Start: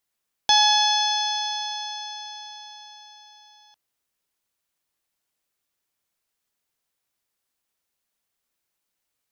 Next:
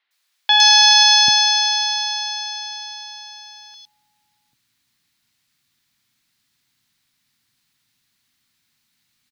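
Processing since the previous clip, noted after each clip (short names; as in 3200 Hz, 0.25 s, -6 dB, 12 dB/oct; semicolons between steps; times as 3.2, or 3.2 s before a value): graphic EQ 125/250/500/2000/4000 Hz +12/+9/-9/+6/+11 dB; limiter -6 dBFS, peak gain reduction 6.5 dB; three bands offset in time mids, highs, lows 0.11/0.79 s, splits 450/3200 Hz; gain +7.5 dB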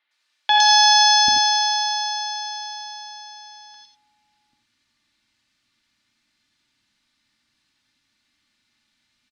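air absorption 79 m; comb 3.4 ms, depth 50%; non-linear reverb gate 0.11 s rising, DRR 3 dB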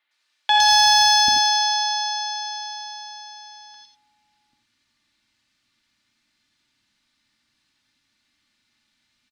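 soft clip -5.5 dBFS, distortion -23 dB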